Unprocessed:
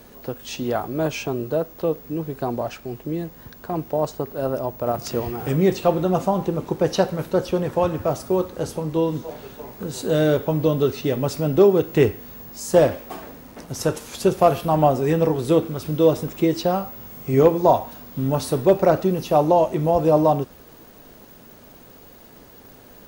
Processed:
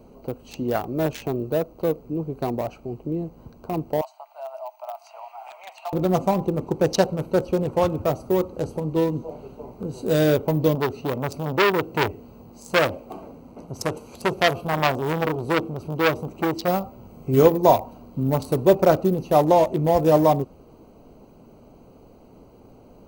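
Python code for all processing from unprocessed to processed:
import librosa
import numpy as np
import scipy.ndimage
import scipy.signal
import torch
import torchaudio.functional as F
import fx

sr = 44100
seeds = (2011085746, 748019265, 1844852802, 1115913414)

y = fx.chain(x, sr, fx.cheby_ripple_highpass(hz=630.0, ripple_db=6),
    fx.band_squash(depth_pct=70), at=(4.01, 5.93))
y = fx.chain(y, sr, fx.highpass(hz=57.0, slope=6),
    fx.transformer_sat(knee_hz=1800.0), at=(10.75, 16.68))
y = fx.wiener(y, sr, points=25)
y = fx.high_shelf(y, sr, hz=3900.0, db=11.0)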